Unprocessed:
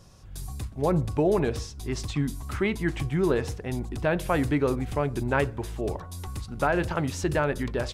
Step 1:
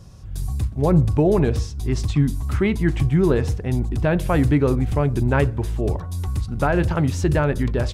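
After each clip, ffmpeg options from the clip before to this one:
ffmpeg -i in.wav -af "equalizer=frequency=74:width=0.32:gain=10,volume=2dB" out.wav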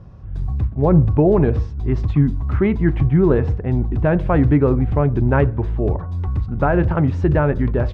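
ffmpeg -i in.wav -af "lowpass=1700,volume=3dB" out.wav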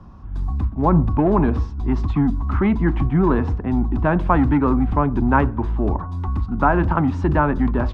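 ffmpeg -i in.wav -filter_complex "[0:a]equalizer=frequency=125:width_type=o:width=1:gain=-10,equalizer=frequency=250:width_type=o:width=1:gain=8,equalizer=frequency=500:width_type=o:width=1:gain=-10,equalizer=frequency=1000:width_type=o:width=1:gain=9,equalizer=frequency=2000:width_type=o:width=1:gain=-4,acrossover=split=180|490[link_01][link_02][link_03];[link_02]asoftclip=type=tanh:threshold=-21dB[link_04];[link_01][link_04][link_03]amix=inputs=3:normalize=0,volume=1.5dB" out.wav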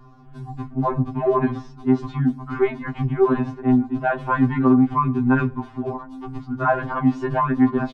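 ffmpeg -i in.wav -af "aecho=1:1:5:0.53,afftfilt=real='re*2.45*eq(mod(b,6),0)':imag='im*2.45*eq(mod(b,6),0)':win_size=2048:overlap=0.75" out.wav

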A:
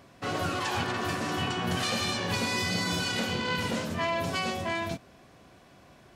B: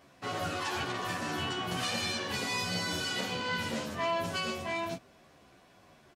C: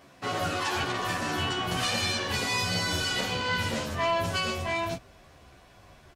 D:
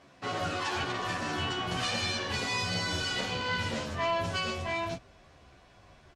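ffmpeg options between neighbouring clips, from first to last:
ffmpeg -i in.wav -filter_complex "[0:a]lowshelf=frequency=280:gain=-4.5,asplit=2[link_01][link_02];[link_02]adelay=11.1,afreqshift=-1.3[link_03];[link_01][link_03]amix=inputs=2:normalize=1" out.wav
ffmpeg -i in.wav -af "asubboost=boost=5.5:cutoff=87,volume=5dB" out.wav
ffmpeg -i in.wav -af "lowpass=7400,volume=-3dB" out.wav

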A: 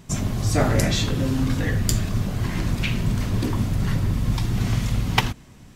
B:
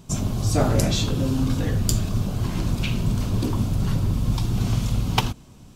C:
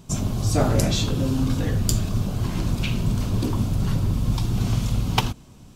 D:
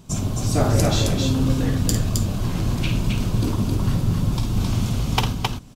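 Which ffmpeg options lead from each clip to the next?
ffmpeg -i in.wav -af "equalizer=frequency=1900:width=2.7:gain=-11" out.wav
ffmpeg -i in.wav -af anull out.wav
ffmpeg -i in.wav -af "aecho=1:1:52.48|265.3:0.398|0.708" out.wav

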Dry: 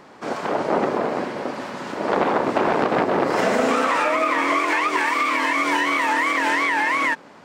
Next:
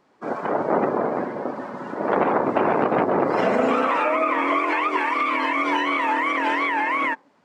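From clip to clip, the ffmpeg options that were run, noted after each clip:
ffmpeg -i in.wav -af "afftdn=noise_reduction=16:noise_floor=-32,adynamicequalizer=threshold=0.02:dfrequency=1800:dqfactor=2.4:tfrequency=1800:tqfactor=2.4:attack=5:release=100:ratio=0.375:range=2.5:mode=cutabove:tftype=bell" out.wav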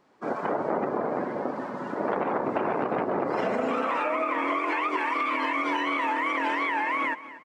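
ffmpeg -i in.wav -af "acompressor=threshold=-22dB:ratio=6,aecho=1:1:237|474|711:0.158|0.0555|0.0194,volume=-1.5dB" out.wav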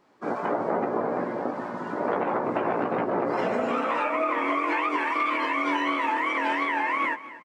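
ffmpeg -i in.wav -filter_complex "[0:a]asplit=2[link_01][link_02];[link_02]adelay=17,volume=-5.5dB[link_03];[link_01][link_03]amix=inputs=2:normalize=0" out.wav

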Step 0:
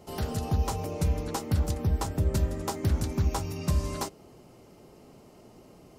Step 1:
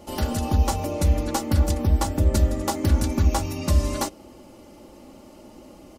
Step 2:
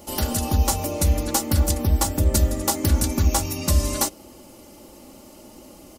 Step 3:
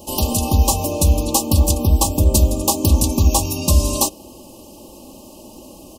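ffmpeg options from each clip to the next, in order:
ffmpeg -i in.wav -af "aecho=1:1:3.5:0.68,volume=5.5dB" out.wav
ffmpeg -i in.wav -af "crystalizer=i=2:c=0" out.wav
ffmpeg -i in.wav -af "asuperstop=centerf=1700:order=20:qfactor=1.3,volume=5dB" out.wav

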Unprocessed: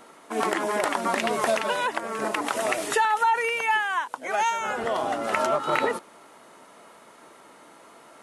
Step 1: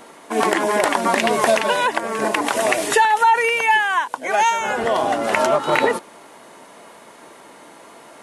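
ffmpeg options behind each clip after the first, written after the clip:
ffmpeg -i in.wav -af "bandreject=frequency=1300:width=8.5,volume=7.5dB" out.wav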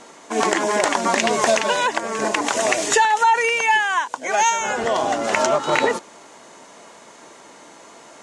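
ffmpeg -i in.wav -af "lowpass=frequency=6800:width_type=q:width=2.8,volume=-1.5dB" out.wav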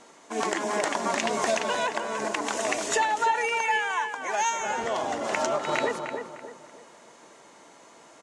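ffmpeg -i in.wav -filter_complex "[0:a]asplit=2[link_01][link_02];[link_02]adelay=303,lowpass=frequency=2100:poles=1,volume=-6dB,asplit=2[link_03][link_04];[link_04]adelay=303,lowpass=frequency=2100:poles=1,volume=0.39,asplit=2[link_05][link_06];[link_06]adelay=303,lowpass=frequency=2100:poles=1,volume=0.39,asplit=2[link_07][link_08];[link_08]adelay=303,lowpass=frequency=2100:poles=1,volume=0.39,asplit=2[link_09][link_10];[link_10]adelay=303,lowpass=frequency=2100:poles=1,volume=0.39[link_11];[link_01][link_03][link_05][link_07][link_09][link_11]amix=inputs=6:normalize=0,volume=-8.5dB" out.wav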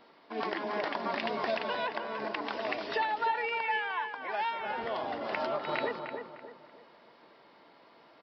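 ffmpeg -i in.wav -af "aresample=11025,aresample=44100,volume=-6dB" out.wav

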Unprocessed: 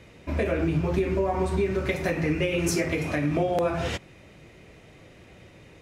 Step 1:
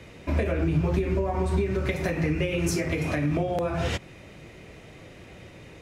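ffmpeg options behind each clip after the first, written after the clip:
ffmpeg -i in.wav -filter_complex "[0:a]acrossover=split=150[link_01][link_02];[link_02]acompressor=threshold=-31dB:ratio=3[link_03];[link_01][link_03]amix=inputs=2:normalize=0,volume=4dB" out.wav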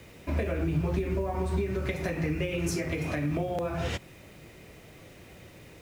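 ffmpeg -i in.wav -af "acrusher=bits=8:mix=0:aa=0.000001,volume=-4dB" out.wav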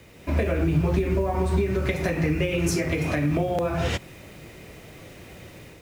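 ffmpeg -i in.wav -af "dynaudnorm=framelen=100:gausssize=5:maxgain=6dB" out.wav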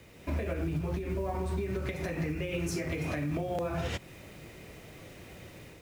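ffmpeg -i in.wav -af "acrusher=bits=8:mode=log:mix=0:aa=0.000001,alimiter=limit=-19.5dB:level=0:latency=1:release=264,volume=-4.5dB" out.wav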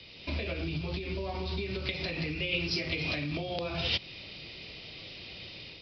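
ffmpeg -i in.wav -filter_complex "[0:a]acrossover=split=330[link_01][link_02];[link_02]aexciter=amount=8:drive=5:freq=2500[link_03];[link_01][link_03]amix=inputs=2:normalize=0,aresample=11025,aresample=44100,volume=-2.5dB" out.wav

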